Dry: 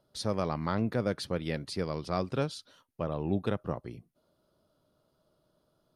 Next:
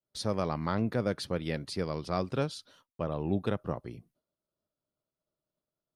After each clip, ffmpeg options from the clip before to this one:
-af "agate=range=0.0224:threshold=0.00112:ratio=3:detection=peak"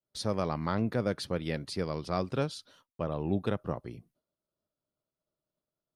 -af anull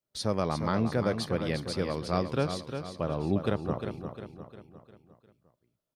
-af "aecho=1:1:353|706|1059|1412|1765:0.398|0.187|0.0879|0.0413|0.0194,volume=1.26"

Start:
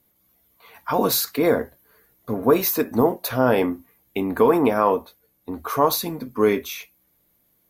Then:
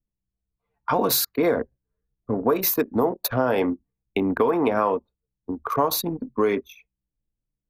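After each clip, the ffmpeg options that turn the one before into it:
-filter_complex "[0:a]anlmdn=251,acrossover=split=320|880|3900[s0][s1][s2][s3];[s0]alimiter=limit=0.075:level=0:latency=1[s4];[s4][s1][s2][s3]amix=inputs=4:normalize=0,acompressor=threshold=0.1:ratio=6,volume=1.41"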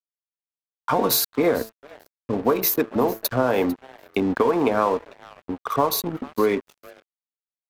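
-filter_complex "[0:a]bandreject=f=111.1:t=h:w=4,bandreject=f=222.2:t=h:w=4,bandreject=f=333.3:t=h:w=4,bandreject=f=444.4:t=h:w=4,bandreject=f=555.5:t=h:w=4,bandreject=f=666.6:t=h:w=4,bandreject=f=777.7:t=h:w=4,bandreject=f=888.8:t=h:w=4,bandreject=f=999.9:t=h:w=4,bandreject=f=1111:t=h:w=4,bandreject=f=1222.1:t=h:w=4,bandreject=f=1333.2:t=h:w=4,bandreject=f=1444.3:t=h:w=4,bandreject=f=1555.4:t=h:w=4,bandreject=f=1666.5:t=h:w=4,bandreject=f=1777.6:t=h:w=4,bandreject=f=1888.7:t=h:w=4,asplit=4[s0][s1][s2][s3];[s1]adelay=448,afreqshift=140,volume=0.119[s4];[s2]adelay=896,afreqshift=280,volume=0.0355[s5];[s3]adelay=1344,afreqshift=420,volume=0.0107[s6];[s0][s4][s5][s6]amix=inputs=4:normalize=0,aeval=exprs='sgn(val(0))*max(abs(val(0))-0.0119,0)':c=same,volume=1.26"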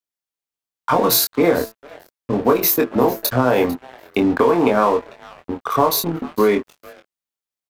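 -filter_complex "[0:a]asplit=2[s0][s1];[s1]adelay=24,volume=0.596[s2];[s0][s2]amix=inputs=2:normalize=0,volume=1.5"

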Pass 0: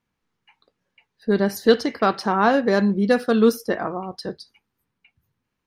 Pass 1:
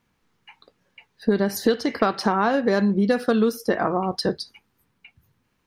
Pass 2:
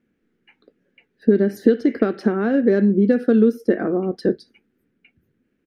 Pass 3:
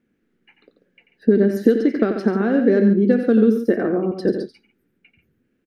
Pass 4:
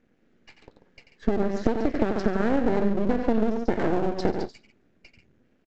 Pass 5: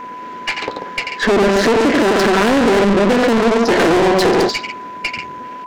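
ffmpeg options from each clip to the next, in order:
-af "acompressor=threshold=0.0562:ratio=10,volume=2.66"
-af "firequalizer=gain_entry='entry(120,0);entry(230,13);entry(380,13);entry(970,-12);entry(1500,4);entry(4300,-8)':delay=0.05:min_phase=1,volume=0.501"
-af "aecho=1:1:89|140:0.376|0.282"
-af "acompressor=threshold=0.0708:ratio=6,aresample=16000,aeval=exprs='max(val(0),0)':c=same,aresample=44100,volume=2"
-filter_complex "[0:a]asplit=2[s0][s1];[s1]highpass=f=720:p=1,volume=126,asoftclip=type=tanh:threshold=0.596[s2];[s0][s2]amix=inputs=2:normalize=0,lowpass=f=4400:p=1,volume=0.501,bandreject=f=71.71:t=h:w=4,bandreject=f=143.42:t=h:w=4,bandreject=f=215.13:t=h:w=4,aeval=exprs='val(0)+0.0398*sin(2*PI*1000*n/s)':c=same"

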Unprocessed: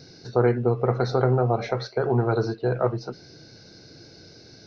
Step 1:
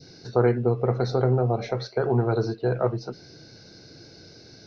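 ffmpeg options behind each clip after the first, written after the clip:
-af "adynamicequalizer=threshold=0.0126:dfrequency=1300:dqfactor=0.8:tfrequency=1300:tqfactor=0.8:attack=5:release=100:ratio=0.375:range=3.5:mode=cutabove:tftype=bell"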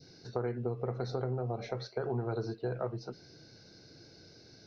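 -af "acompressor=threshold=0.0794:ratio=6,volume=0.398"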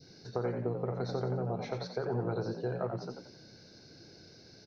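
-filter_complex "[0:a]asplit=5[s0][s1][s2][s3][s4];[s1]adelay=89,afreqshift=56,volume=0.473[s5];[s2]adelay=178,afreqshift=112,volume=0.157[s6];[s3]adelay=267,afreqshift=168,volume=0.0513[s7];[s4]adelay=356,afreqshift=224,volume=0.017[s8];[s0][s5][s6][s7][s8]amix=inputs=5:normalize=0"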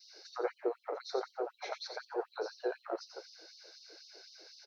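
-af "afftfilt=real='re*gte(b*sr/1024,300*pow(3000/300,0.5+0.5*sin(2*PI*4*pts/sr)))':imag='im*gte(b*sr/1024,300*pow(3000/300,0.5+0.5*sin(2*PI*4*pts/sr)))':win_size=1024:overlap=0.75,volume=1.41"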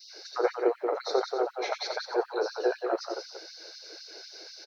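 -af "aecho=1:1:183:0.473,volume=2.66"

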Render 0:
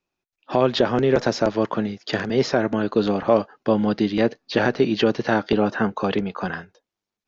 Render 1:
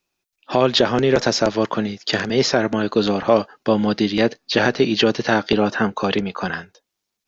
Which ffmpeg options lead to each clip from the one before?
-af "highshelf=f=2700:g=10,volume=1.19"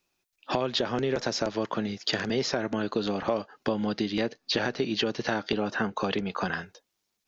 -af "acompressor=threshold=0.0501:ratio=4"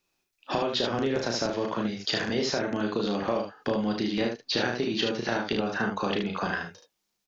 -af "aecho=1:1:34|75:0.596|0.562,volume=0.841"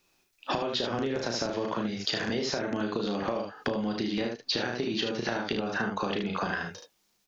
-af "acompressor=threshold=0.0178:ratio=6,volume=2.37"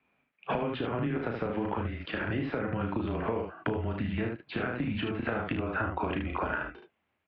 -af "highpass=f=210:t=q:w=0.5412,highpass=f=210:t=q:w=1.307,lowpass=f=2800:t=q:w=0.5176,lowpass=f=2800:t=q:w=0.7071,lowpass=f=2800:t=q:w=1.932,afreqshift=-120"

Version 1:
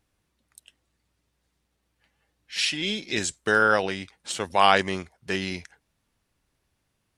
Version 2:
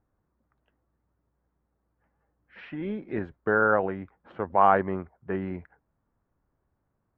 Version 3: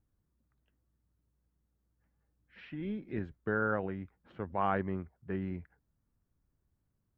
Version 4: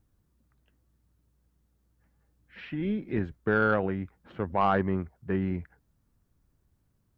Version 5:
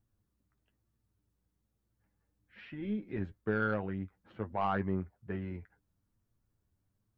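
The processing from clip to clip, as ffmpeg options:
-af "lowpass=f=1400:w=0.5412,lowpass=f=1400:w=1.3066"
-af "equalizer=f=820:w=0.44:g=-13"
-af "asoftclip=type=tanh:threshold=0.0944,volume=2.51"
-af "flanger=delay=8.5:depth=2.1:regen=35:speed=1.1:shape=triangular,volume=0.631"

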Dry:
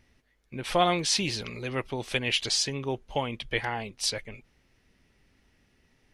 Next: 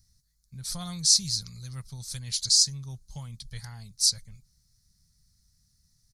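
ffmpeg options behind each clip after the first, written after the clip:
-af "firequalizer=gain_entry='entry(160,0);entry(300,-29);entry(1300,-15);entry(2800,-26);entry(4200,5);entry(6600,9)':delay=0.05:min_phase=1"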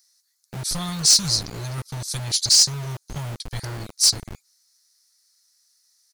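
-filter_complex "[0:a]acrossover=split=690|3800[s0][s1][s2];[s0]acrusher=bits=6:mix=0:aa=0.000001[s3];[s3][s1][s2]amix=inputs=3:normalize=0,asoftclip=type=tanh:threshold=0.168,volume=2.51"

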